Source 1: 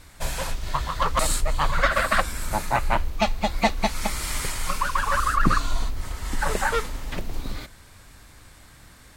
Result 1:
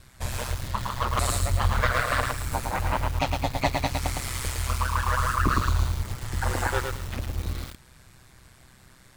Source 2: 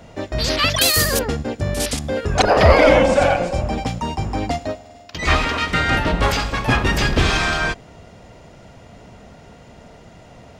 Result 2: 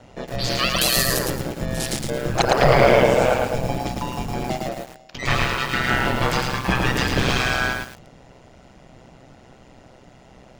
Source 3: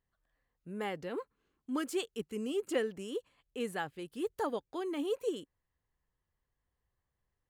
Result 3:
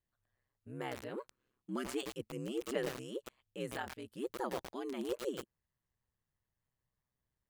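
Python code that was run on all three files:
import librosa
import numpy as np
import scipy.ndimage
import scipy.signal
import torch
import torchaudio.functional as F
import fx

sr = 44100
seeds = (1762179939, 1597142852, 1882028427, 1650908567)

y = x * np.sin(2.0 * np.pi * 64.0 * np.arange(len(x)) / sr)
y = fx.echo_crushed(y, sr, ms=110, feedback_pct=35, bits=6, wet_db=-3)
y = y * 10.0 ** (-1.5 / 20.0)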